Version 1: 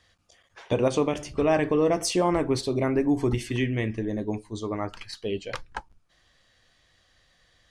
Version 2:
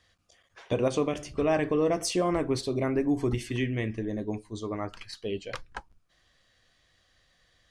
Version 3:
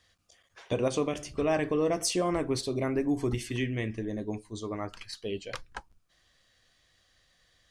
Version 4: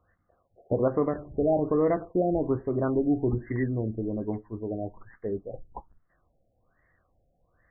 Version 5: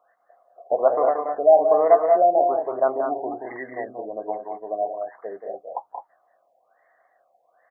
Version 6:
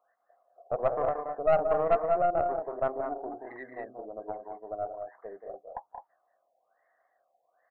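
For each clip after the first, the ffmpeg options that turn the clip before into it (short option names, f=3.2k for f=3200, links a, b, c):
-af "bandreject=f=880:w=12,volume=-3dB"
-af "highshelf=f=4.3k:g=5.5,volume=-2dB"
-af "afftfilt=real='re*lt(b*sr/1024,760*pow(2200/760,0.5+0.5*sin(2*PI*1.2*pts/sr)))':imag='im*lt(b*sr/1024,760*pow(2200/760,0.5+0.5*sin(2*PI*1.2*pts/sr)))':win_size=1024:overlap=0.75,volume=3.5dB"
-filter_complex "[0:a]highpass=f=700:t=q:w=4.8,asplit=2[a][b];[b]aecho=0:1:179|210:0.473|0.473[c];[a][c]amix=inputs=2:normalize=0,volume=2dB"
-af "aeval=exprs='(tanh(2.82*val(0)+0.55)-tanh(0.55))/2.82':c=same,volume=-6.5dB"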